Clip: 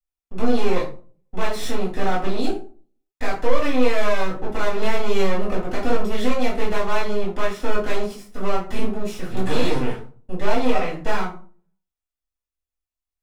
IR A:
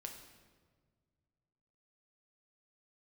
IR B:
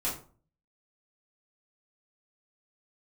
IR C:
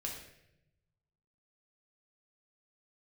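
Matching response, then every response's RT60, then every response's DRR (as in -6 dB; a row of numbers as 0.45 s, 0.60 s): B; 1.6 s, 0.40 s, 0.85 s; 2.5 dB, -8.0 dB, -1.5 dB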